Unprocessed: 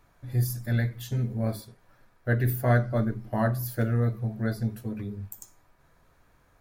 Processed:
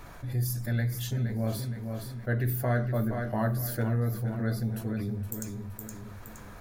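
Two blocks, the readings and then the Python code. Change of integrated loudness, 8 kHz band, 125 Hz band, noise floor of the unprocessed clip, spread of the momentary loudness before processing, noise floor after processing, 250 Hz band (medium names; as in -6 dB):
-2.5 dB, +2.5 dB, -2.0 dB, -63 dBFS, 13 LU, -46 dBFS, -1.5 dB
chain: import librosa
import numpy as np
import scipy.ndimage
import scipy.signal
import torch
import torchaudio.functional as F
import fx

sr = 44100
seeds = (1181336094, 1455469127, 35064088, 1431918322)

p1 = x + fx.echo_feedback(x, sr, ms=468, feedback_pct=29, wet_db=-11, dry=0)
p2 = fx.env_flatten(p1, sr, amount_pct=50)
y = F.gain(torch.from_numpy(p2), -6.0).numpy()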